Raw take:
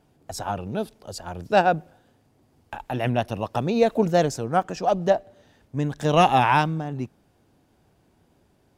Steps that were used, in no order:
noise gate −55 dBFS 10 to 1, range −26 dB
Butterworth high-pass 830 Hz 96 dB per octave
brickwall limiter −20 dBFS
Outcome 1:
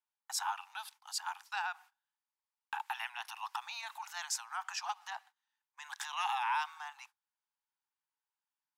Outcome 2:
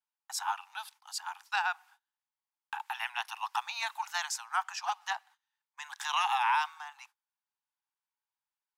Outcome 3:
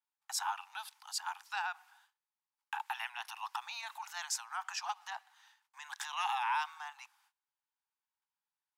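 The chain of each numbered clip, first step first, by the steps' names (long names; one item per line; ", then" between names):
brickwall limiter, then Butterworth high-pass, then noise gate
Butterworth high-pass, then noise gate, then brickwall limiter
noise gate, then brickwall limiter, then Butterworth high-pass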